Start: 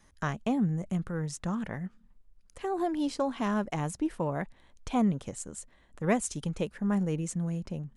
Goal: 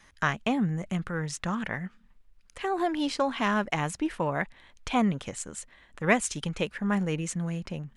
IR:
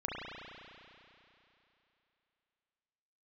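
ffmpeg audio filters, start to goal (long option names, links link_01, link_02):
-af "equalizer=frequency=2300:width_type=o:width=2.5:gain=11"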